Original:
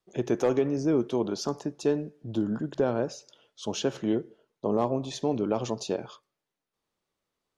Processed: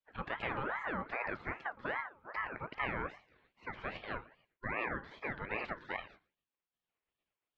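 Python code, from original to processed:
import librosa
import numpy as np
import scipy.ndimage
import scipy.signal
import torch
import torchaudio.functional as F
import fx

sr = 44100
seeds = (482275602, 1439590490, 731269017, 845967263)

p1 = fx.filter_sweep_highpass(x, sr, from_hz=200.0, to_hz=550.0, start_s=0.95, end_s=3.54, q=2.8)
p2 = fx.spec_gate(p1, sr, threshold_db=-15, keep='weak')
p3 = fx.over_compress(p2, sr, threshold_db=-40.0, ratio=-0.5)
p4 = p2 + F.gain(torch.from_numpy(p3), -2.0).numpy()
p5 = scipy.signal.sosfilt(scipy.signal.bessel(4, 1500.0, 'lowpass', norm='mag', fs=sr, output='sos'), p4)
p6 = p5 + 10.0 ** (-20.5 / 20.0) * np.pad(p5, (int(115 * sr / 1000.0), 0))[:len(p5)]
y = fx.ring_lfo(p6, sr, carrier_hz=1100.0, swing_pct=40, hz=2.5)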